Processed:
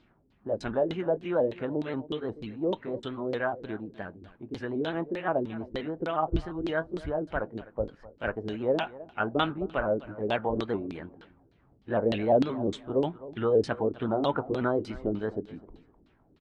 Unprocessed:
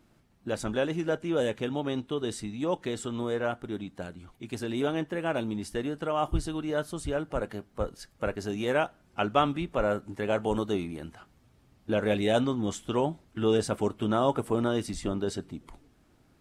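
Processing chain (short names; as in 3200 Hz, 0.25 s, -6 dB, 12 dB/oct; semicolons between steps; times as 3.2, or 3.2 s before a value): repeated pitch sweeps +2 st, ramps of 0.176 s; feedback echo 0.255 s, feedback 25%, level -18 dB; LFO low-pass saw down 3.3 Hz 290–4200 Hz; gain -1.5 dB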